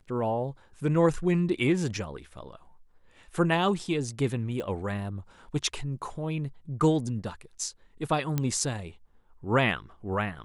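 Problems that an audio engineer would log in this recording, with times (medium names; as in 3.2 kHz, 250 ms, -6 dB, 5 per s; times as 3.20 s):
4.60 s: pop -23 dBFS
8.38 s: pop -14 dBFS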